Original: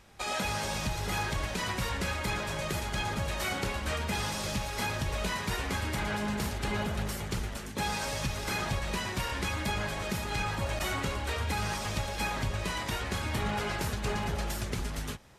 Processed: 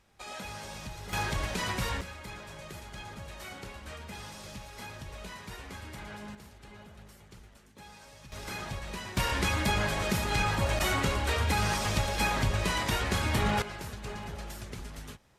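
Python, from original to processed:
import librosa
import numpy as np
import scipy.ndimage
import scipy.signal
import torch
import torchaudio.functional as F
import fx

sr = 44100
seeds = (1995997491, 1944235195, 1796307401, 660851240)

y = fx.gain(x, sr, db=fx.steps((0.0, -9.0), (1.13, 0.5), (2.01, -11.0), (6.35, -18.5), (8.32, -6.0), (9.17, 4.0), (13.62, -7.5)))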